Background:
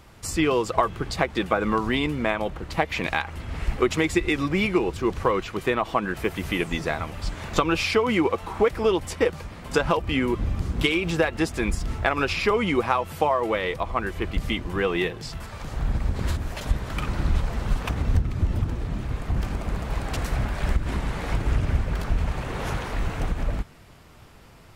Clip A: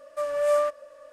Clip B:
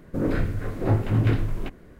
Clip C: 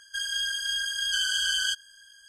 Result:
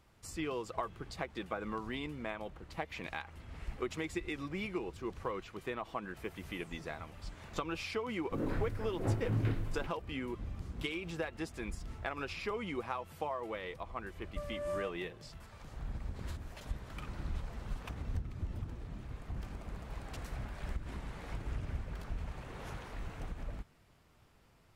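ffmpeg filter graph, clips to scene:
ffmpeg -i bed.wav -i cue0.wav -i cue1.wav -filter_complex "[0:a]volume=-16dB[link_01];[2:a]atrim=end=1.99,asetpts=PTS-STARTPTS,volume=-11.5dB,afade=type=in:duration=0.004:curve=hsin,afade=type=out:start_time=1.986:duration=0.004:curve=hsin,adelay=360738S[link_02];[1:a]atrim=end=1.12,asetpts=PTS-STARTPTS,volume=-16dB,afade=type=in:duration=0.004:curve=hsin,afade=type=out:start_time=1.116:duration=0.004:curve=hsin,adelay=14190[link_03];[link_01][link_02][link_03]amix=inputs=3:normalize=0" out.wav

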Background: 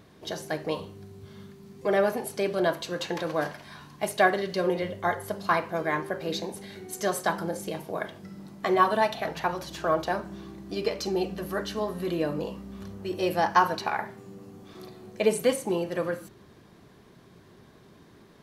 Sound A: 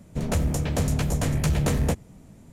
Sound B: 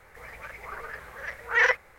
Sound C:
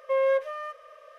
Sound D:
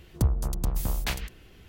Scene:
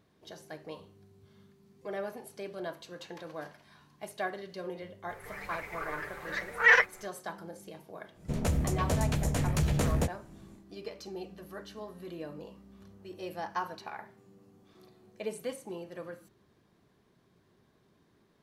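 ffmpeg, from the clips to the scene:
ffmpeg -i bed.wav -i cue0.wav -i cue1.wav -filter_complex "[0:a]volume=-13.5dB[link_01];[2:a]aecho=1:1:6.8:0.56,atrim=end=1.98,asetpts=PTS-STARTPTS,volume=-1dB,afade=type=in:duration=0.004:curve=hsin,afade=type=out:start_time=1.976:duration=0.004:curve=hsin,adelay=224469S[link_02];[1:a]atrim=end=2.52,asetpts=PTS-STARTPTS,volume=-5dB,afade=type=in:duration=0.1,afade=type=out:start_time=2.42:duration=0.1,adelay=8130[link_03];[link_01][link_02][link_03]amix=inputs=3:normalize=0" out.wav

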